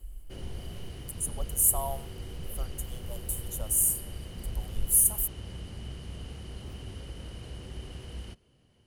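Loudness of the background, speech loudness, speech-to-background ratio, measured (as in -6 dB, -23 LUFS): -43.0 LUFS, -26.0 LUFS, 17.0 dB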